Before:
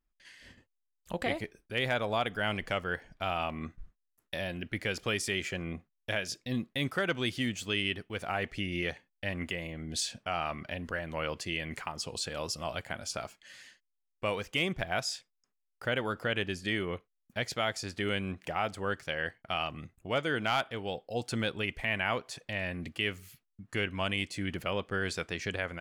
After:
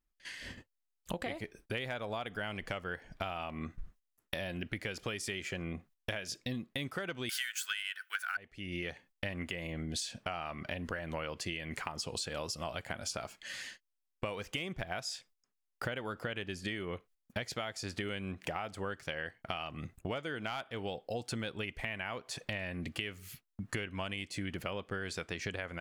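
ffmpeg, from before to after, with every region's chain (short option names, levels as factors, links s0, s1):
-filter_complex "[0:a]asettb=1/sr,asplit=3[s0][s1][s2];[s0]atrim=end=7.294[s3];[s1]atrim=start=7.29:end=8.37,asetpts=PTS-STARTPTS,afade=t=in:d=0.004:c=qsin,afade=t=out:st=1.076:d=0.004:c=qsin,highpass=f=1500:t=q:w=12,aemphasis=mode=production:type=riaa,acontrast=75[s4];[s2]atrim=start=8.366[s5];[s3][s4]acrossfade=d=0.004:c1=hsin:c2=qsin[s6];[s6][s5]acrossfade=d=0.004:c1=qsin:c2=hsin,agate=range=0.282:threshold=0.00112:ratio=16:detection=peak,acompressor=threshold=0.00708:ratio=16,volume=2.66"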